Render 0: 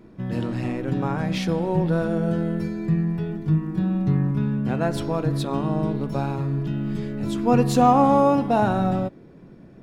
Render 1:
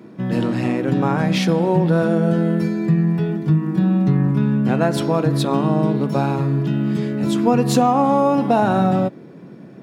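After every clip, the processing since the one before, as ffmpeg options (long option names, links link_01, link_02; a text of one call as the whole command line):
ffmpeg -i in.wav -af "highpass=frequency=130:width=0.5412,highpass=frequency=130:width=1.3066,acompressor=threshold=-19dB:ratio=6,volume=7.5dB" out.wav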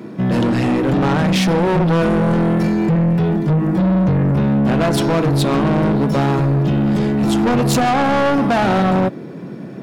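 ffmpeg -i in.wav -af "asoftclip=type=tanh:threshold=-21.5dB,volume=9dB" out.wav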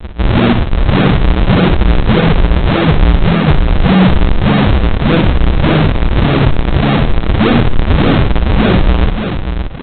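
ffmpeg -i in.wav -af "aresample=8000,acrusher=samples=39:mix=1:aa=0.000001:lfo=1:lforange=62.4:lforate=1.7,aresample=44100,aecho=1:1:59|579:0.376|0.422,alimiter=level_in=7dB:limit=-1dB:release=50:level=0:latency=1,volume=-1dB" out.wav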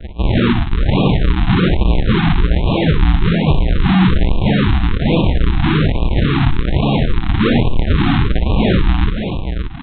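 ffmpeg -i in.wav -af "afftfilt=real='re*(1-between(b*sr/1024,470*pow(1700/470,0.5+0.5*sin(2*PI*1.2*pts/sr))/1.41,470*pow(1700/470,0.5+0.5*sin(2*PI*1.2*pts/sr))*1.41))':imag='im*(1-between(b*sr/1024,470*pow(1700/470,0.5+0.5*sin(2*PI*1.2*pts/sr))/1.41,470*pow(1700/470,0.5+0.5*sin(2*PI*1.2*pts/sr))*1.41))':win_size=1024:overlap=0.75,volume=-3.5dB" out.wav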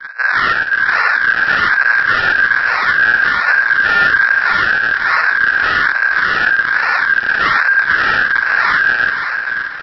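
ffmpeg -i in.wav -af "aeval=exprs='val(0)*sin(2*PI*1600*n/s)':channel_layout=same,equalizer=frequency=1100:width_type=o:width=0.52:gain=3.5,aecho=1:1:484|968|1452|1936:0.251|0.105|0.0443|0.0186,volume=1dB" out.wav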